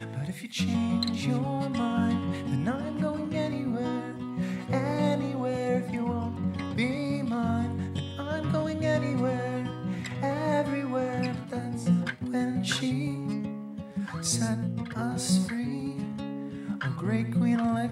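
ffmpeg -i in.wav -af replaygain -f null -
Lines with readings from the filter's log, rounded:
track_gain = +10.6 dB
track_peak = 0.138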